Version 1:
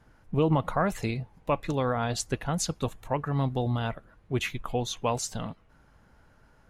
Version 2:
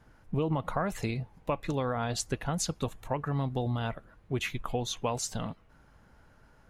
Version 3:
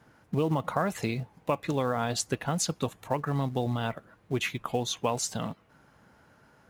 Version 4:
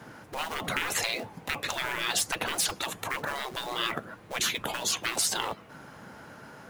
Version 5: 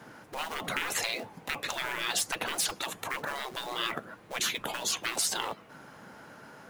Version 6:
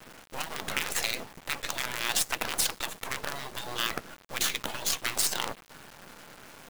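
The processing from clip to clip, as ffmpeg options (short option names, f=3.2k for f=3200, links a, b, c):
-af "acompressor=threshold=-27dB:ratio=3"
-filter_complex "[0:a]highpass=120,asplit=2[a][b];[b]acrusher=bits=4:mode=log:mix=0:aa=0.000001,volume=-8dB[c];[a][c]amix=inputs=2:normalize=0"
-filter_complex "[0:a]acrossover=split=120[a][b];[b]aeval=exprs='0.237*sin(PI/2*1.78*val(0)/0.237)':c=same[c];[a][c]amix=inputs=2:normalize=0,afftfilt=real='re*lt(hypot(re,im),0.112)':imag='im*lt(hypot(re,im),0.112)':win_size=1024:overlap=0.75,volume=4dB"
-af "equalizer=f=75:t=o:w=1.7:g=-6.5,volume=-2dB"
-af "acrusher=bits=5:dc=4:mix=0:aa=0.000001,volume=2.5dB"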